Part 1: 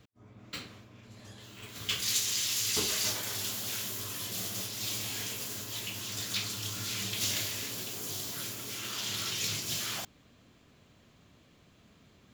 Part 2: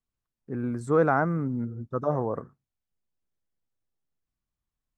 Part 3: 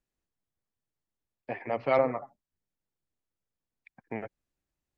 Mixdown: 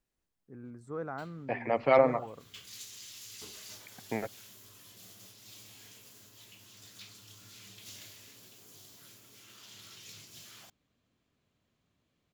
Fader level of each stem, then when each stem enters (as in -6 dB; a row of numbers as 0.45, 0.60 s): -17.0, -16.5, +2.0 dB; 0.65, 0.00, 0.00 s